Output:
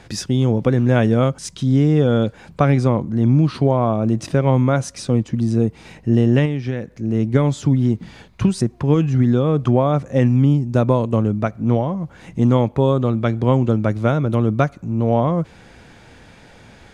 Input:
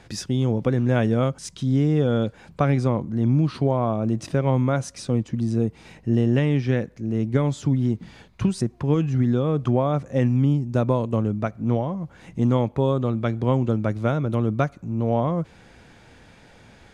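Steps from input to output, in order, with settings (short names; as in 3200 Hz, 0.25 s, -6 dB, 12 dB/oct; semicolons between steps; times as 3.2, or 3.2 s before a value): 6.45–6.97 compressor 6:1, threshold -24 dBFS, peak gain reduction 8.5 dB; gain +5 dB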